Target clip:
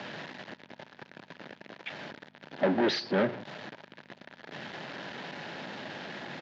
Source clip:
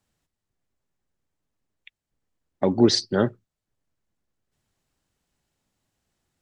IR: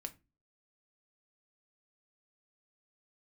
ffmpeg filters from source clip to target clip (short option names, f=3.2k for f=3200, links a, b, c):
-af "aeval=exprs='val(0)+0.5*0.0237*sgn(val(0))':c=same,equalizer=f=940:t=o:w=0.33:g=8.5,bandreject=f=920:w=19,aresample=16000,asoftclip=type=tanh:threshold=-22.5dB,aresample=44100,aeval=exprs='val(0)+0.00224*(sin(2*PI*50*n/s)+sin(2*PI*2*50*n/s)/2+sin(2*PI*3*50*n/s)/3+sin(2*PI*4*50*n/s)/4+sin(2*PI*5*50*n/s)/5)':c=same,acrusher=bits=10:mix=0:aa=0.000001,highpass=f=160:w=0.5412,highpass=f=160:w=1.3066,equalizer=f=600:t=q:w=4:g=5,equalizer=f=1.1k:t=q:w=4:g=-6,equalizer=f=1.7k:t=q:w=4:g=7,lowpass=f=3.9k:w=0.5412,lowpass=f=3.9k:w=1.3066"